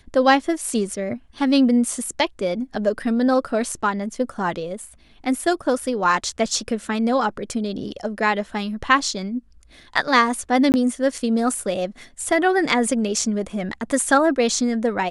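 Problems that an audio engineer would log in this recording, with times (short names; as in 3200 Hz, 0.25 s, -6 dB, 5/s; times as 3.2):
10.72–10.74 gap 19 ms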